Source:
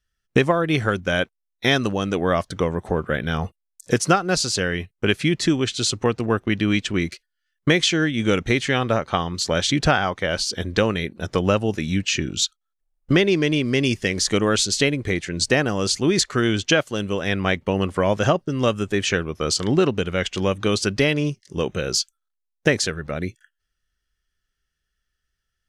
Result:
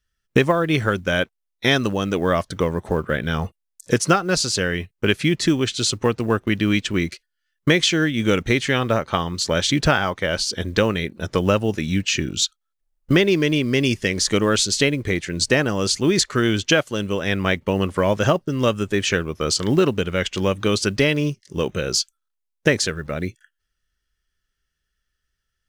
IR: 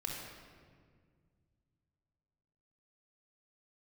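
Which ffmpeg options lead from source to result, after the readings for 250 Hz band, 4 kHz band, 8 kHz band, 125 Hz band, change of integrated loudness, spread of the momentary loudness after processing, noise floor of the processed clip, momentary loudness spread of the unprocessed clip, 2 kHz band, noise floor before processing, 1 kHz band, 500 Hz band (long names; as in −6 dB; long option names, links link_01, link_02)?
+1.0 dB, +1.0 dB, +1.0 dB, +1.0 dB, +1.0 dB, 6 LU, −78 dBFS, 6 LU, +1.0 dB, −79 dBFS, 0.0 dB, +1.0 dB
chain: -af "acrusher=bits=9:mode=log:mix=0:aa=0.000001,bandreject=frequency=740:width=12,volume=1dB"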